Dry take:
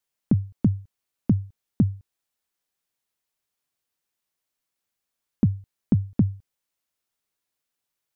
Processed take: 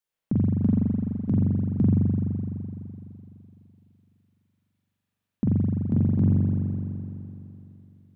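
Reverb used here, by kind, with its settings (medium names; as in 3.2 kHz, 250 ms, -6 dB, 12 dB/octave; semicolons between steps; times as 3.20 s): spring tank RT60 3 s, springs 42 ms, chirp 35 ms, DRR -8 dB; trim -6.5 dB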